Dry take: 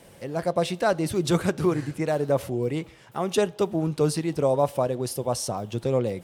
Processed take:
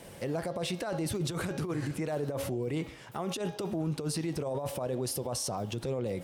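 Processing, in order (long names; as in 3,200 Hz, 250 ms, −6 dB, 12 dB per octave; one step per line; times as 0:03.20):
hum removal 273.9 Hz, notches 24
compressor whose output falls as the input rises −25 dBFS, ratio −0.5
brickwall limiter −25 dBFS, peak gain reduction 12.5 dB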